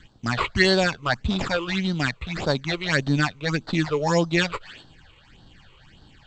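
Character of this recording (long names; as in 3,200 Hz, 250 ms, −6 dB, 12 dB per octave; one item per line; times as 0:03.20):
aliases and images of a low sample rate 6,100 Hz, jitter 0%
phaser sweep stages 8, 1.7 Hz, lowest notch 210–2,300 Hz
G.722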